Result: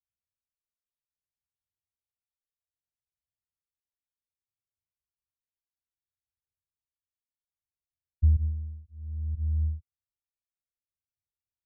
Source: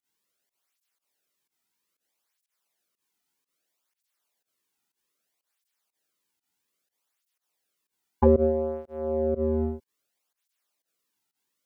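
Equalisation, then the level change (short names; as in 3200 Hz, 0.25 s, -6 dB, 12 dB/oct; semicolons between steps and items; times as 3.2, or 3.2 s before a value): inverse Chebyshev low-pass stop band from 600 Hz, stop band 80 dB; +5.5 dB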